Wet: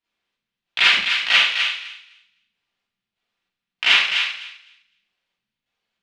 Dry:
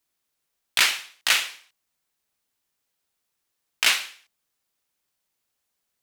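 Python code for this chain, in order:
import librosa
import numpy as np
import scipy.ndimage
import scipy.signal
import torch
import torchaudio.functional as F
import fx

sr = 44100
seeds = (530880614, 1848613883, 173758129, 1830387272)

y = fx.filter_lfo_lowpass(x, sr, shape='square', hz=1.6, low_hz=210.0, high_hz=3100.0, q=1.6)
y = fx.echo_thinned(y, sr, ms=254, feedback_pct=17, hz=1100.0, wet_db=-5.5)
y = fx.rev_schroeder(y, sr, rt60_s=0.47, comb_ms=32, drr_db=-9.0)
y = F.gain(torch.from_numpy(y), -6.0).numpy()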